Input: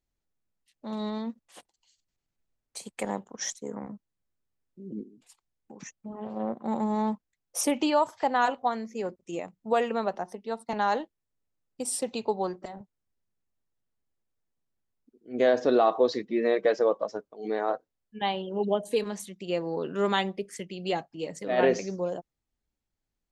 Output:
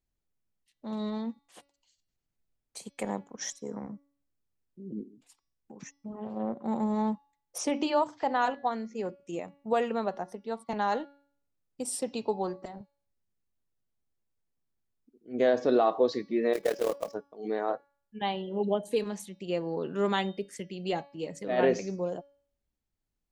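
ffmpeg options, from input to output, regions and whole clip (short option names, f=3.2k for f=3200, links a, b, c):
-filter_complex "[0:a]asettb=1/sr,asplit=3[a][b][c];[a]atrim=end=7.584[d];[b]atrim=start=7.58:end=9.03,asetpts=PTS-STARTPTS,afade=t=in:d=0.004:c=qsin,afade=t=out:st=1.446:d=0.004:c=qsin,lowpass=f=7.2k:w=0.5412,lowpass=f=7.2k:w=1.3066,bandreject=f=60:t=h:w=6,bandreject=f=120:t=h:w=6,bandreject=f=180:t=h:w=6,bandreject=f=240:t=h:w=6,bandreject=f=300:t=h:w=6,bandreject=f=360:t=h:w=6[e];[c]atrim=start=9.026[f];[d][e]acrossfade=d=0.004:c1=hsin:c2=qsin[g];[g][f]acrossfade=d=0.004:c1=qsin:c2=hsin,asettb=1/sr,asplit=3[h][i][j];[h]atrim=end=16.534[k];[i]atrim=start=16.53:end=17.14,asetpts=PTS-STARTPTS,afade=t=in:d=0.004:c=qsin,afade=t=out:st=0.606:d=0.004:c=qsin,equalizer=f=2.4k:t=o:w=0.33:g=3,tremolo=f=38:d=0.788,acrusher=bits=3:mode=log:mix=0:aa=0.000001[l];[j]atrim=start=17.136[m];[k][l]acrossfade=d=0.004:c1=hsin:c2=qsin[n];[n][m]acrossfade=d=0.004:c1=qsin:c2=hsin,lowshelf=f=410:g=4,bandreject=f=282.5:t=h:w=4,bandreject=f=565:t=h:w=4,bandreject=f=847.5:t=h:w=4,bandreject=f=1.13k:t=h:w=4,bandreject=f=1.4125k:t=h:w=4,bandreject=f=1.695k:t=h:w=4,bandreject=f=1.9775k:t=h:w=4,bandreject=f=2.26k:t=h:w=4,bandreject=f=2.5425k:t=h:w=4,bandreject=f=2.825k:t=h:w=4,bandreject=f=3.1075k:t=h:w=4,bandreject=f=3.39k:t=h:w=4,bandreject=f=3.6725k:t=h:w=4,bandreject=f=3.955k:t=h:w=4,bandreject=f=4.2375k:t=h:w=4,bandreject=f=4.52k:t=h:w=4,bandreject=f=4.8025k:t=h:w=4,bandreject=f=5.085k:t=h:w=4,bandreject=f=5.3675k:t=h:w=4,bandreject=f=5.65k:t=h:w=4,bandreject=f=5.9325k:t=h:w=4,volume=-3.5dB"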